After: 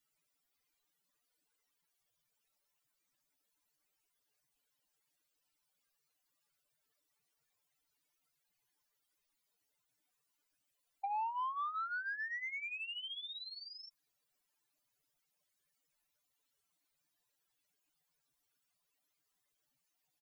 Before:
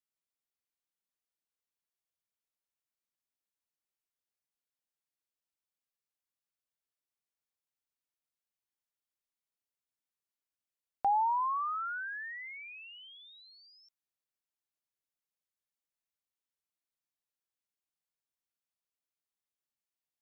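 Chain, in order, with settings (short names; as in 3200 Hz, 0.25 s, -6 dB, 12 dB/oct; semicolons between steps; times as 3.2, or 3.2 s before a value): spectral contrast raised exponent 2.8; comb 6.8 ms, depth 61%; compressor 3:1, threshold -50 dBFS, peak gain reduction 18.5 dB; soft clip -39.5 dBFS, distortion -23 dB; gain +9 dB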